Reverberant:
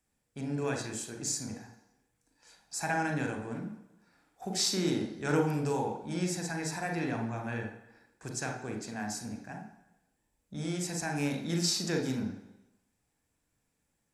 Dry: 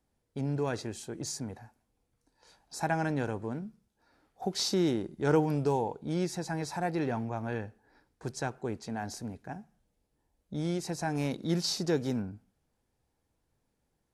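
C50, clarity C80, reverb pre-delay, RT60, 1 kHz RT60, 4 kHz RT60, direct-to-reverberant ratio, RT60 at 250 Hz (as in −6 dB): 7.0 dB, 10.5 dB, 36 ms, 0.95 s, 1.0 s, 1.0 s, 3.5 dB, 0.90 s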